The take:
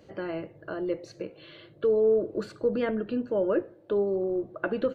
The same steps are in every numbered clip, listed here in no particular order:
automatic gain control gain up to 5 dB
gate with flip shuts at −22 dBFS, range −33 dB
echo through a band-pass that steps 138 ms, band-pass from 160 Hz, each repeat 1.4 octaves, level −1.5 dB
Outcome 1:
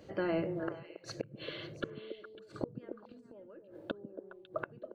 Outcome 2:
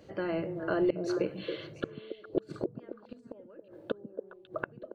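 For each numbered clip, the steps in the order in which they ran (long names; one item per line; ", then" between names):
automatic gain control, then gate with flip, then echo through a band-pass that steps
gate with flip, then automatic gain control, then echo through a band-pass that steps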